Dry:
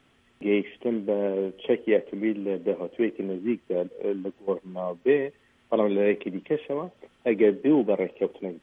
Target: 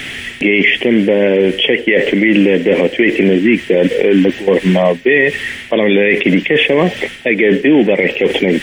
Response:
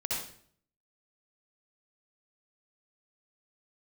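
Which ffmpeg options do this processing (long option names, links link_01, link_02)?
-af "highshelf=frequency=1500:width_type=q:width=3:gain=8,areverse,acompressor=threshold=-29dB:ratio=16,areverse,alimiter=level_in=31.5dB:limit=-1dB:release=50:level=0:latency=1,volume=-1dB"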